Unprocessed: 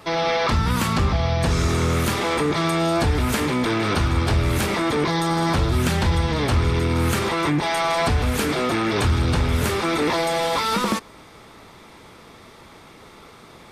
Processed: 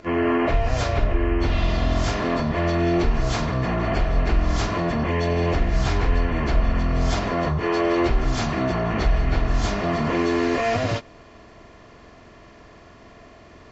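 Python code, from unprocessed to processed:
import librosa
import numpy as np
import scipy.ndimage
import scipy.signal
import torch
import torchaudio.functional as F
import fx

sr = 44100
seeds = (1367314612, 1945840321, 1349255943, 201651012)

y = fx.pitch_bins(x, sr, semitones=-11.5)
y = y + 0.36 * np.pad(y, (int(2.9 * sr / 1000.0), 0))[:len(y)]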